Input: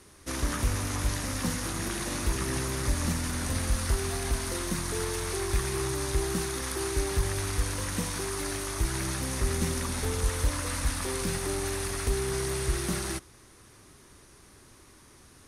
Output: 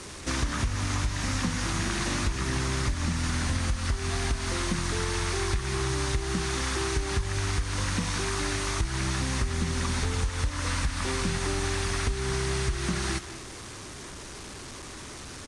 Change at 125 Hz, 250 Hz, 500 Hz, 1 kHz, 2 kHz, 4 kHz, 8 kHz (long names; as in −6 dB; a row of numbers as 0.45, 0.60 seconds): +2.5, +1.5, −1.0, +3.0, +4.0, +3.5, −1.0 decibels